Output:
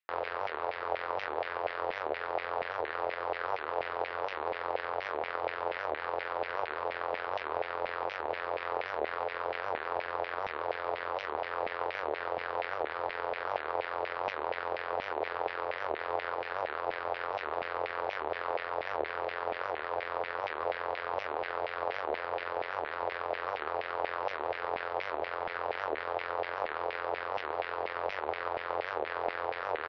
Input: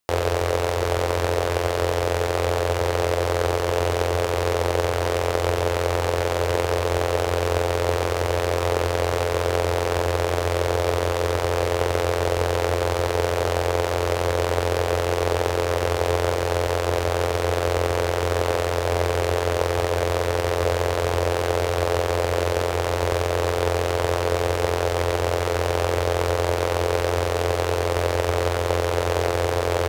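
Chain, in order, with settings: LFO band-pass saw down 4.2 Hz 700–2300 Hz; downsampling 11025 Hz; record warp 78 rpm, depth 250 cents; gain -3 dB

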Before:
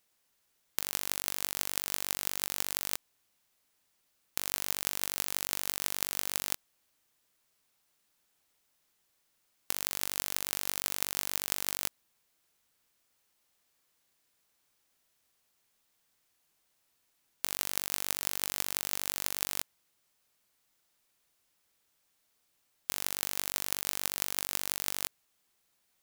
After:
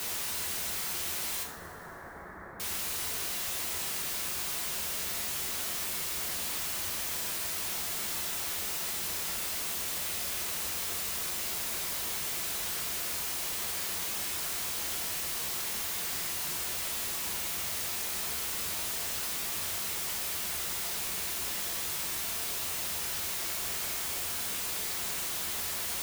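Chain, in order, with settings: infinite clipping; 1.43–2.6 elliptic low-pass 1800 Hz, stop band 40 dB; two-slope reverb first 0.45 s, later 2.7 s, from -18 dB, DRR 1 dB; gain +2.5 dB

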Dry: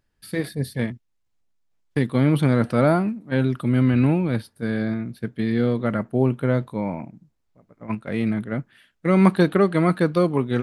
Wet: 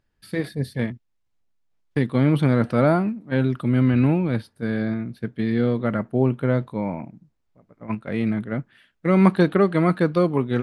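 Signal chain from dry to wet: high shelf 7700 Hz -10.5 dB

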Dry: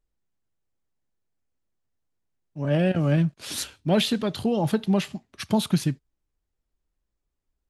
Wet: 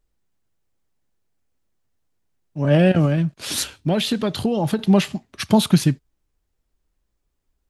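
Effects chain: 3.05–4.79 compressor 6:1, threshold -24 dBFS, peak gain reduction 8 dB; gain +7 dB

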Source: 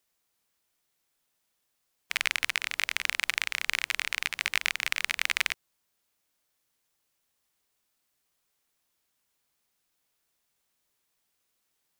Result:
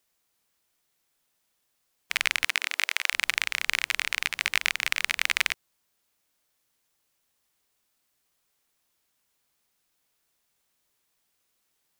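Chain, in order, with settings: 2.44–3.12 HPF 180 Hz -> 560 Hz 24 dB/oct; gain +2.5 dB

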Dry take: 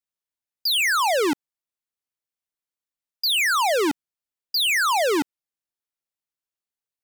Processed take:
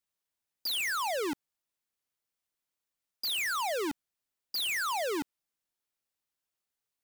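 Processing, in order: hard clip -34.5 dBFS, distortion -17 dB; gain +3 dB

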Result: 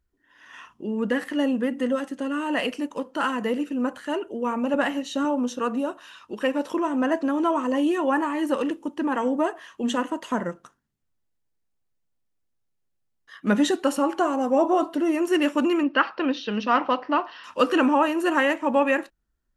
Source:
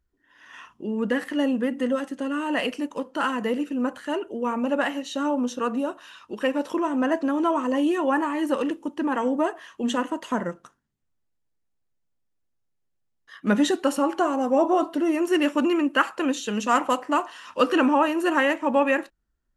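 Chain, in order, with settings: 4.74–5.25 low shelf 170 Hz +10 dB; 15.83–17.44 steep low-pass 5400 Hz 72 dB/oct

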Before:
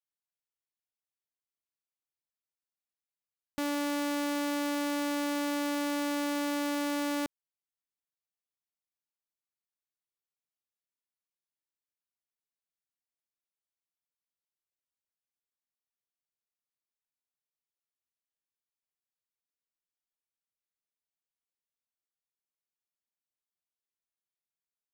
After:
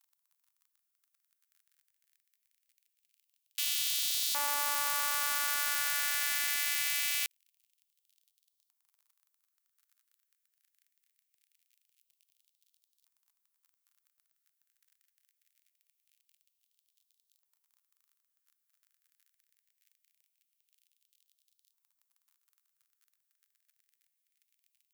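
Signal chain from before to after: crackle 37/s -60 dBFS; RIAA curve recording; LFO high-pass saw up 0.23 Hz 910–3800 Hz; gain -3 dB

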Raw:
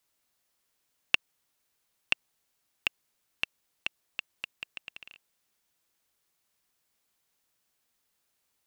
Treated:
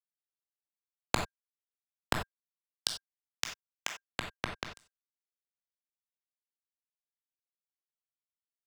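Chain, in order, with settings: steep low-pass 1500 Hz 36 dB/oct; low shelf 440 Hz +7.5 dB; in parallel at +3 dB: compressor 6:1, threshold -43 dBFS, peak gain reduction 14 dB; on the sum: added harmonics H 2 -22 dB, 3 -12 dB, 5 -33 dB, 8 -16 dB, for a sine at -9.5 dBFS; fuzz box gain 29 dB, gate -36 dBFS; formant shift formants +3 st; ring modulator 1600 Hz; on a send at -4 dB: reverb, pre-delay 18 ms; on the sum: three-band expander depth 40%; gain +5.5 dB

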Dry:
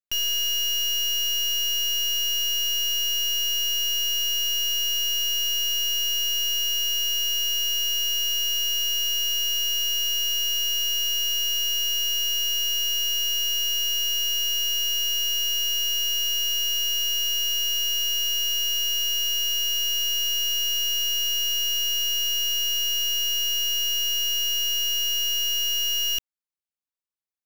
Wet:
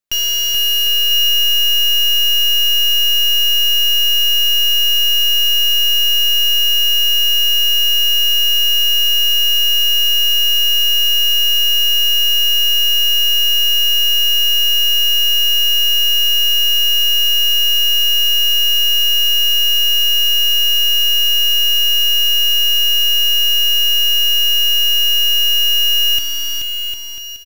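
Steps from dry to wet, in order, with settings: bouncing-ball echo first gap 0.43 s, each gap 0.75×, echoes 5; gain +8 dB

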